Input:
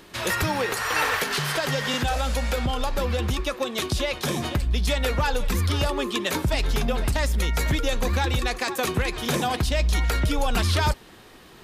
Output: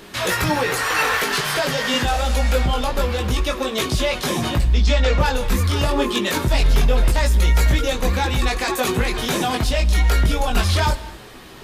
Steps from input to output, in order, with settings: 4.7–5.18 steep low-pass 7100 Hz; in parallel at -1 dB: limiter -22.5 dBFS, peak gain reduction 10 dB; on the sum: soft clip -11.5 dBFS, distortion -25 dB; chorus voices 4, 0.23 Hz, delay 20 ms, depth 4.8 ms; on a send at -15.5 dB: reverb, pre-delay 3 ms; on the sum: gain +5 dB

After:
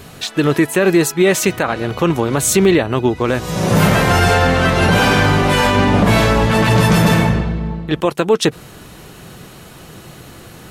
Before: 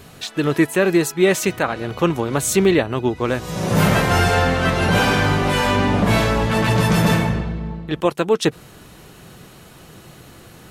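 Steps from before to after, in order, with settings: limiter -9 dBFS, peak gain reduction 5.5 dB; gain +5.5 dB

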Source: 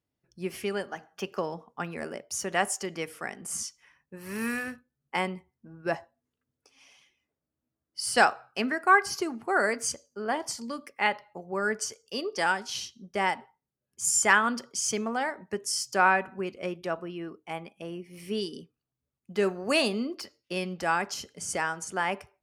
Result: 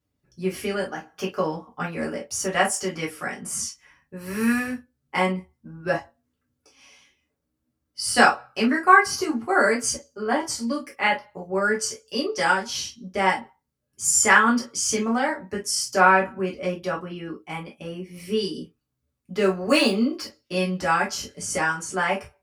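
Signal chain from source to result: 19.38–20.03 median filter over 3 samples; low shelf 150 Hz +5 dB; reverb, pre-delay 3 ms, DRR -4 dB

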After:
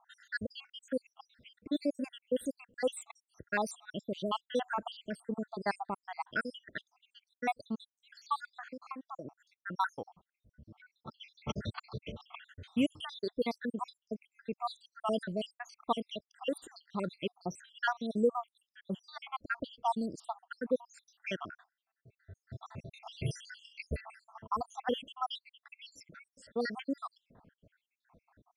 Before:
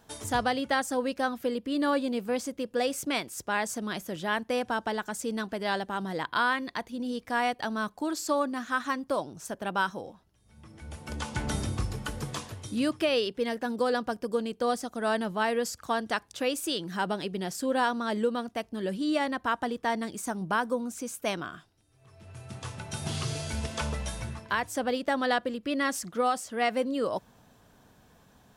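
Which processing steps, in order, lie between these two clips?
random spectral dropouts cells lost 79%; low-pass opened by the level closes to 1600 Hz, open at -28 dBFS; 8.52–9.25 compressor 10:1, threshold -40 dBFS, peak gain reduction 10.5 dB; 10.78–12.45 speaker cabinet 110–4500 Hz, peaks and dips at 290 Hz -9 dB, 770 Hz -4 dB, 1400 Hz +6 dB, 4100 Hz +10 dB

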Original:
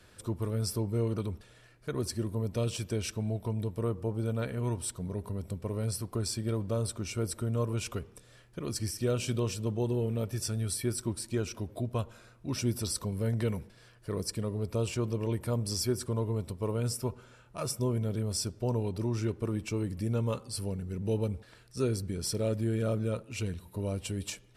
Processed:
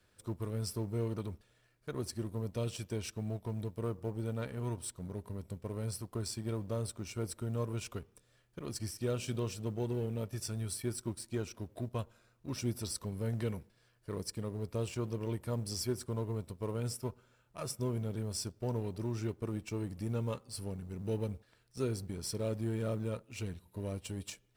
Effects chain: G.711 law mismatch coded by A; gain -4 dB

